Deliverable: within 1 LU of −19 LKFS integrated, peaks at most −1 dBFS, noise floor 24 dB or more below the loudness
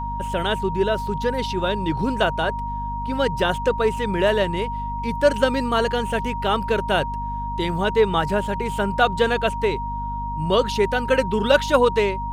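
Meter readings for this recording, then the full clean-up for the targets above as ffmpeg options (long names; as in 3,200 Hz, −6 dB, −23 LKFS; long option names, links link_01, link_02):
mains hum 50 Hz; hum harmonics up to 250 Hz; level of the hum −28 dBFS; interfering tone 940 Hz; level of the tone −27 dBFS; integrated loudness −22.0 LKFS; sample peak −2.0 dBFS; target loudness −19.0 LKFS
→ -af "bandreject=frequency=50:width_type=h:width=6,bandreject=frequency=100:width_type=h:width=6,bandreject=frequency=150:width_type=h:width=6,bandreject=frequency=200:width_type=h:width=6,bandreject=frequency=250:width_type=h:width=6"
-af "bandreject=frequency=940:width=30"
-af "volume=3dB,alimiter=limit=-1dB:level=0:latency=1"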